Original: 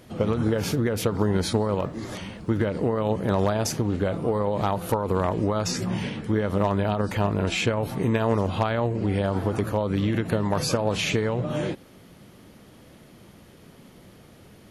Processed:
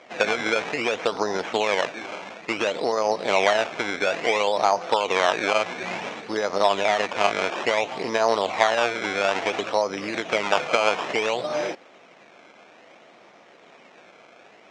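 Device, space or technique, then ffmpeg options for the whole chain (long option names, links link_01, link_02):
circuit-bent sampling toy: -af "lowpass=2300,acrusher=samples=16:mix=1:aa=0.000001:lfo=1:lforange=16:lforate=0.58,highpass=580,equalizer=frequency=700:width_type=q:width=4:gain=5,equalizer=frequency=2300:width_type=q:width=4:gain=6,equalizer=frequency=4600:width_type=q:width=4:gain=-6,lowpass=frequency=5900:width=0.5412,lowpass=frequency=5900:width=1.3066,volume=6dB"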